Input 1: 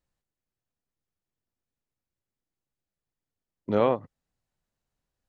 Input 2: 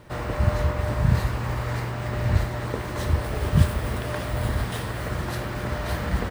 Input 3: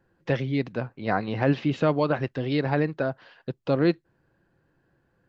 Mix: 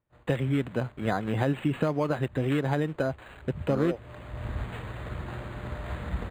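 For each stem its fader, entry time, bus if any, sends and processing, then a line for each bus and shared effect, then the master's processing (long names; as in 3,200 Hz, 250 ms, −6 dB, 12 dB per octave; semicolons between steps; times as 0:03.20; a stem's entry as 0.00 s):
−7.5 dB, 0.00 s, no bus, no send, frequency shifter mixed with the dry sound +2.3 Hz
0:03.13 −20 dB → 0:03.83 −9.5 dB, 0.00 s, bus A, no send, automatic ducking −10 dB, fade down 0.45 s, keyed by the third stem
+1.5 dB, 0.00 s, bus A, no send, bit reduction 9 bits
bus A: 0.0 dB, high-shelf EQ 3,200 Hz +8 dB; downward compressor 5 to 1, threshold −23 dBFS, peak gain reduction 8.5 dB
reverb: not used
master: noise gate −52 dBFS, range −15 dB; low-shelf EQ 130 Hz +4 dB; linearly interpolated sample-rate reduction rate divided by 8×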